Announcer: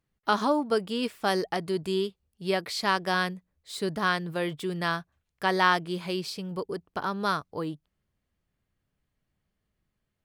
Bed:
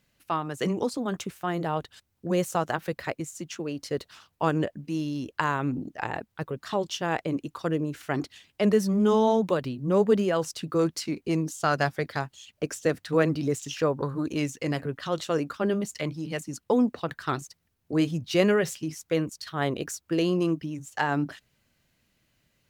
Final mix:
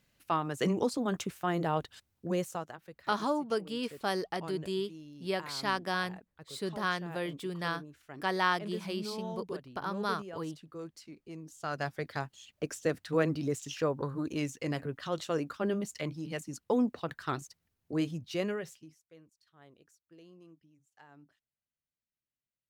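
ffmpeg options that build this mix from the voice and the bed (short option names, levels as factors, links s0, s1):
-filter_complex "[0:a]adelay=2800,volume=0.501[s0];[1:a]volume=3.76,afade=t=out:st=2.03:d=0.72:silence=0.141254,afade=t=in:st=11.41:d=0.82:silence=0.211349,afade=t=out:st=17.78:d=1.24:silence=0.0530884[s1];[s0][s1]amix=inputs=2:normalize=0"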